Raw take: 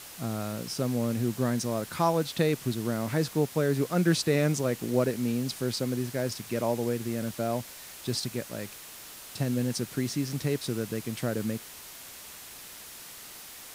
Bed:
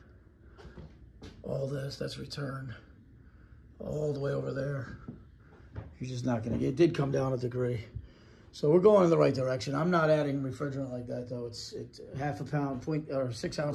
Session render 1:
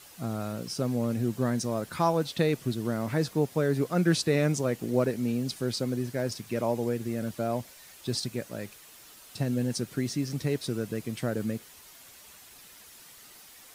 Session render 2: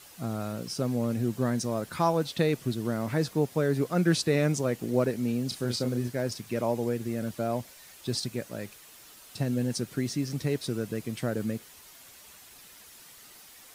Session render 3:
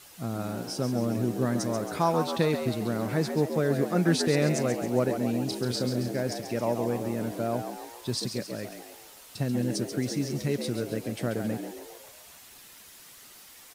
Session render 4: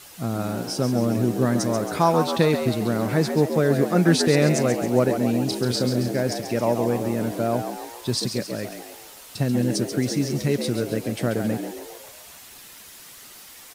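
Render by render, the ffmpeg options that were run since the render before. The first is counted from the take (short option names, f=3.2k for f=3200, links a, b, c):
-af "afftdn=nr=8:nf=-46"
-filter_complex "[0:a]asettb=1/sr,asplit=3[a][b][c];[a]atrim=end=5.484[d];[b]atrim=start=5.48:end=6.08,asetpts=PTS-STARTPTS,afade=t=in:d=0.004:c=qsin,afade=t=out:st=0.596:d=0.004:c=qsin,asplit=2[e][f];[f]adelay=33,volume=-7dB[g];[e][g]amix=inputs=2:normalize=0,atrim=end_sample=26460[h];[c]atrim=start=6.076[i];[d][h]acrossfade=d=0.004:c1=hsin:c2=qsin[j];[j][i]acrossfade=d=0.004:c1=qsin:c2=hsin"
-filter_complex "[0:a]asplit=7[a][b][c][d][e][f][g];[b]adelay=136,afreqshift=79,volume=-8dB[h];[c]adelay=272,afreqshift=158,volume=-13.5dB[i];[d]adelay=408,afreqshift=237,volume=-19dB[j];[e]adelay=544,afreqshift=316,volume=-24.5dB[k];[f]adelay=680,afreqshift=395,volume=-30.1dB[l];[g]adelay=816,afreqshift=474,volume=-35.6dB[m];[a][h][i][j][k][l][m]amix=inputs=7:normalize=0"
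-af "volume=6dB"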